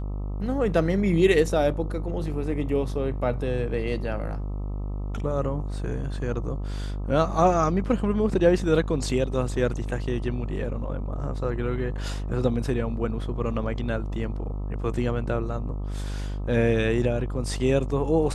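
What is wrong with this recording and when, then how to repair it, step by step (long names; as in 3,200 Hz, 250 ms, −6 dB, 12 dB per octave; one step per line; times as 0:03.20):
mains buzz 50 Hz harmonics 26 −30 dBFS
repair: hum removal 50 Hz, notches 26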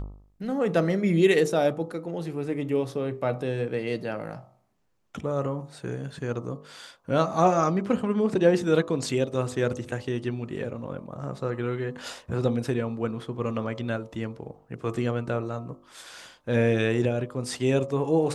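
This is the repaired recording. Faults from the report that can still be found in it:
none of them is left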